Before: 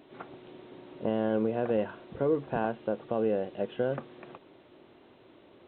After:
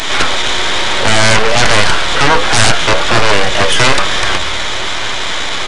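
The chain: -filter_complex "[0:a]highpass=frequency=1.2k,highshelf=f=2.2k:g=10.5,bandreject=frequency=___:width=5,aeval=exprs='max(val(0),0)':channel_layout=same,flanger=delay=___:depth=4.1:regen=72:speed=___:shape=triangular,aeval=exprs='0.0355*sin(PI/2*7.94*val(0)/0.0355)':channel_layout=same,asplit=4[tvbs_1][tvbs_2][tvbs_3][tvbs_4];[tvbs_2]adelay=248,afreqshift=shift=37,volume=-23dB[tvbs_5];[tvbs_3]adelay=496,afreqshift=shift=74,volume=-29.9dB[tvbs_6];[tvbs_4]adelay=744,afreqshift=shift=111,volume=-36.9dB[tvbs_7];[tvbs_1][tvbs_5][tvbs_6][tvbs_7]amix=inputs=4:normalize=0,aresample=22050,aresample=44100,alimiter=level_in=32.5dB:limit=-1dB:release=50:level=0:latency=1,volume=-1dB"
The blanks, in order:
2.7k, 8.9, 1.2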